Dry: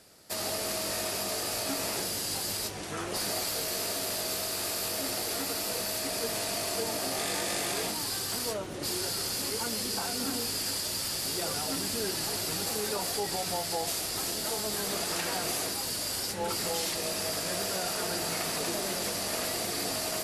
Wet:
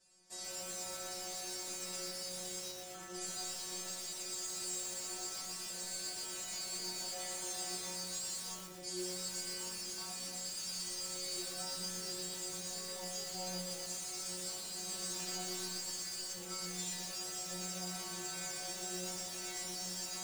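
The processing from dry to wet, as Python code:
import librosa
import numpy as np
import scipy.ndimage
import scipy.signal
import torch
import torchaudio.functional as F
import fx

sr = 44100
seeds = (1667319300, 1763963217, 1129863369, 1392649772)

p1 = fx.lowpass_res(x, sr, hz=7400.0, q=3.2)
p2 = fx.low_shelf(p1, sr, hz=79.0, db=10.5)
p3 = fx.stiff_resonator(p2, sr, f0_hz=180.0, decay_s=0.8, stiffness=0.002)
p4 = p3 + fx.echo_single(p3, sr, ms=405, db=-22.0, dry=0)
p5 = fx.echo_crushed(p4, sr, ms=121, feedback_pct=80, bits=8, wet_db=-3)
y = p5 * librosa.db_to_amplitude(1.5)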